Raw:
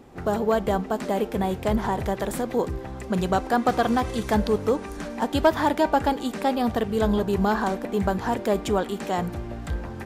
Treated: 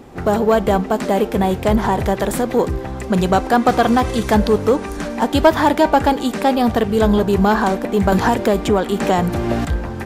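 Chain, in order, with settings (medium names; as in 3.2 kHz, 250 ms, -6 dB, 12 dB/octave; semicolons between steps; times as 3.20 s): in parallel at -9.5 dB: hard clipper -22 dBFS, distortion -9 dB; 8.12–9.65 s: on the sum: three bands compressed up and down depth 100%; trim +6 dB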